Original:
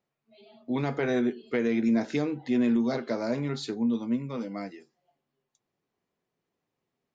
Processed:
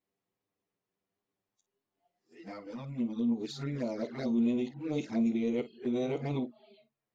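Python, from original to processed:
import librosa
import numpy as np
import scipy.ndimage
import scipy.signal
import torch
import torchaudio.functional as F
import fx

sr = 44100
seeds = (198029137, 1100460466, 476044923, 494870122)

p1 = x[::-1].copy()
p2 = np.clip(10.0 ** (35.5 / 20.0) * p1, -1.0, 1.0) / 10.0 ** (35.5 / 20.0)
p3 = p1 + (p2 * 10.0 ** (-11.5 / 20.0))
p4 = fx.room_early_taps(p3, sr, ms=(22, 51), db=(-16.0, -14.5))
p5 = fx.env_flanger(p4, sr, rest_ms=10.3, full_db=-23.5)
y = p5 * 10.0 ** (-5.0 / 20.0)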